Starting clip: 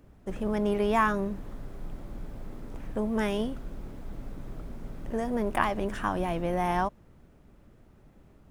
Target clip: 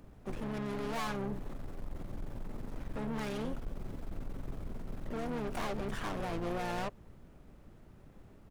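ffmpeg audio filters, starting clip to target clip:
-filter_complex "[0:a]aeval=exprs='(tanh(70.8*val(0)+0.45)-tanh(0.45))/70.8':c=same,asplit=3[a][b][c];[b]asetrate=29433,aresample=44100,atempo=1.49831,volume=-6dB[d];[c]asetrate=88200,aresample=44100,atempo=0.5,volume=-12dB[e];[a][d][e]amix=inputs=3:normalize=0,volume=1dB"

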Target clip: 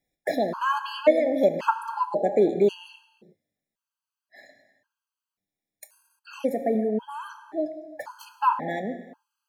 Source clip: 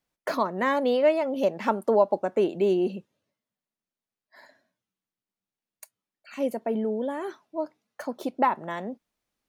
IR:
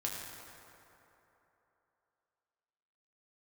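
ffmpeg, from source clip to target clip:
-filter_complex "[0:a]asplit=2[a][b];[1:a]atrim=start_sample=2205,afade=t=out:st=0.4:d=0.01,atrim=end_sample=18081[c];[b][c]afir=irnorm=-1:irlink=0,volume=-4dB[d];[a][d]amix=inputs=2:normalize=0,afftfilt=real='re*gt(sin(2*PI*0.93*pts/sr)*(1-2*mod(floor(b*sr/1024/830),2)),0)':imag='im*gt(sin(2*PI*0.93*pts/sr)*(1-2*mod(floor(b*sr/1024/830),2)),0)':win_size=1024:overlap=0.75"

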